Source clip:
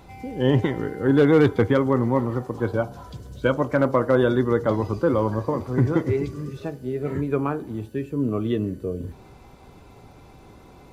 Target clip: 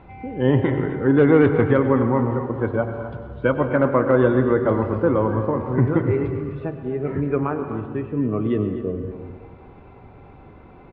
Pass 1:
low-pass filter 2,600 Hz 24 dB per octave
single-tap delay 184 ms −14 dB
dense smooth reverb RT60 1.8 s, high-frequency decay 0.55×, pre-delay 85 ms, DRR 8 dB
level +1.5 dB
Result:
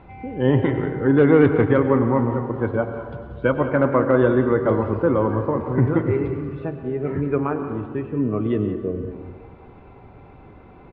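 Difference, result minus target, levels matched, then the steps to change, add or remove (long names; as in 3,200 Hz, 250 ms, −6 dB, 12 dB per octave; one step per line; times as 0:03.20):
echo 67 ms early
change: single-tap delay 251 ms −14 dB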